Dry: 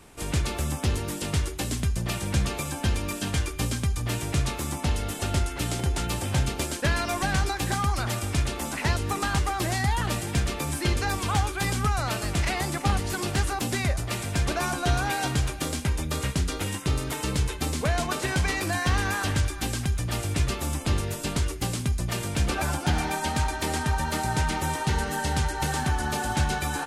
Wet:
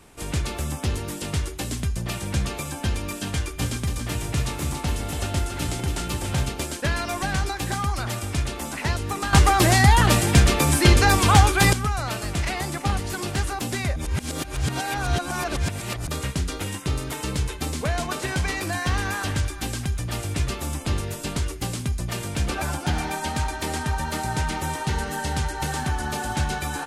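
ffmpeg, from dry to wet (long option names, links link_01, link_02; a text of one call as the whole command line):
ffmpeg -i in.wav -filter_complex "[0:a]asettb=1/sr,asplit=3[link_01][link_02][link_03];[link_01]atrim=end=3.304[link_04];[link_02]atrim=start=3.3:end=6.49,asetpts=PTS-STARTPTS,afade=type=in:duration=0.004:curve=qsin,afade=type=out:start_time=3.186:duration=0.004:curve=qsin,aecho=1:1:281:0.501,atrim=end_sample=140679[link_05];[link_03]atrim=start=6.486[link_06];[link_04][link_05]acrossfade=duration=0.004:curve1=hsin:curve2=qsin[link_07];[link_07][link_06]acrossfade=duration=0.004:curve1=qsin:curve2=hsin,asplit=5[link_08][link_09][link_10][link_11][link_12];[link_08]atrim=end=9.332[link_13];[link_09]atrim=start=9.328:end=11.732,asetpts=PTS-STARTPTS,volume=10dB[link_14];[link_10]atrim=start=11.728:end=13.962[link_15];[link_11]atrim=start=13.958:end=16.082,asetpts=PTS-STARTPTS,areverse[link_16];[link_12]atrim=start=16.078[link_17];[link_13][link_14]acrossfade=duration=0.004:curve1=hsin:curve2=hsin[link_18];[link_18][link_15]acrossfade=duration=0.004:curve1=hsin:curve2=hsin[link_19];[link_19][link_16]acrossfade=duration=0.004:curve1=hsin:curve2=hsin[link_20];[link_20][link_17]acrossfade=duration=0.004:curve1=hsin:curve2=hsin" out.wav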